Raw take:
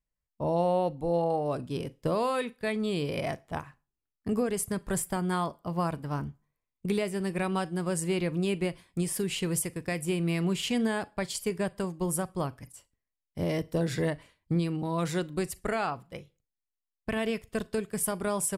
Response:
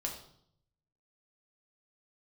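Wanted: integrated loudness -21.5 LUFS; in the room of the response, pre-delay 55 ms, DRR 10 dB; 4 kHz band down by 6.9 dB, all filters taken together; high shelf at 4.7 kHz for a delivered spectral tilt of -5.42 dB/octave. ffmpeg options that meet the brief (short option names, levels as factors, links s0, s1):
-filter_complex "[0:a]equalizer=f=4000:t=o:g=-8.5,highshelf=f=4700:g=-3.5,asplit=2[s0][s1];[1:a]atrim=start_sample=2205,adelay=55[s2];[s1][s2]afir=irnorm=-1:irlink=0,volume=0.282[s3];[s0][s3]amix=inputs=2:normalize=0,volume=2.99"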